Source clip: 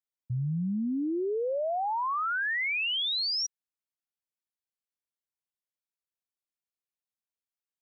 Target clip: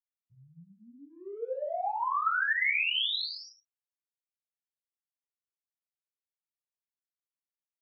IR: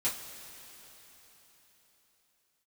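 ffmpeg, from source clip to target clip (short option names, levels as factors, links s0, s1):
-filter_complex "[0:a]lowpass=3300,aemphasis=mode=production:type=bsi,agate=range=0.02:threshold=0.0355:ratio=16:detection=peak,acompressor=threshold=0.00355:ratio=2.5[s0];[1:a]atrim=start_sample=2205,atrim=end_sample=4410,asetrate=23814,aresample=44100[s1];[s0][s1]afir=irnorm=-1:irlink=0,volume=1.88"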